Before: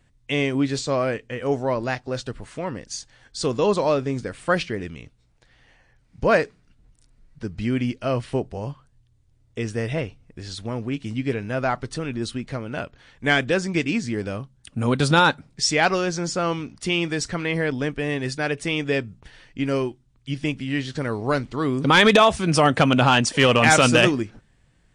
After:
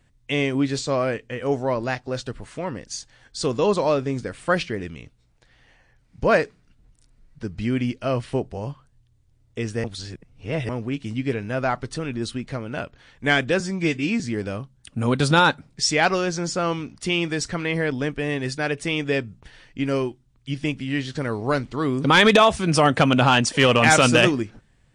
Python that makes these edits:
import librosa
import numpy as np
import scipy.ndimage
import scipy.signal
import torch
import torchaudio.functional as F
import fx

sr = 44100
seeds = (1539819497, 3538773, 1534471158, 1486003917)

y = fx.edit(x, sr, fx.reverse_span(start_s=9.84, length_s=0.85),
    fx.stretch_span(start_s=13.6, length_s=0.4, factor=1.5), tone=tone)